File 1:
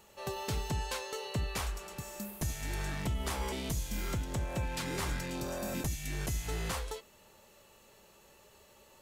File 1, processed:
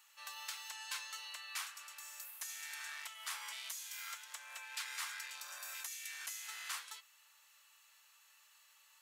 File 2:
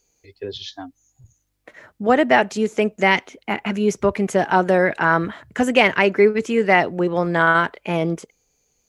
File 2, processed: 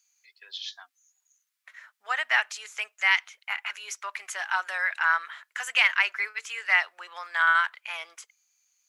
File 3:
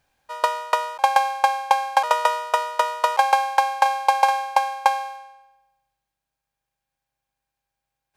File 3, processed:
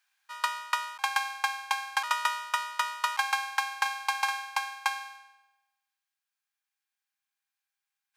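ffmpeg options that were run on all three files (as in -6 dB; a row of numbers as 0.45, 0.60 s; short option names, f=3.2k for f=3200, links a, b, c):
-af "highpass=f=1.2k:w=0.5412,highpass=f=1.2k:w=1.3066,volume=-2.5dB"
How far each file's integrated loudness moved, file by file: -7.0, -7.5, -9.0 LU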